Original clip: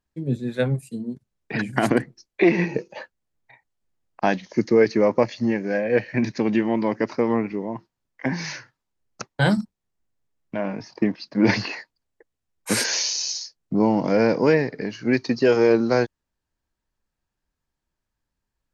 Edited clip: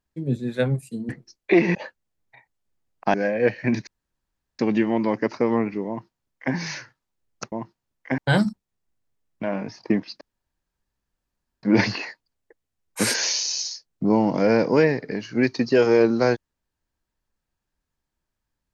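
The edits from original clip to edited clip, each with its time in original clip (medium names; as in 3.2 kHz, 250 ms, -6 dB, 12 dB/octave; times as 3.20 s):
1.09–1.99 s: delete
2.65–2.91 s: delete
4.30–5.64 s: delete
6.37 s: insert room tone 0.72 s
7.66–8.32 s: copy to 9.30 s
11.33 s: insert room tone 1.42 s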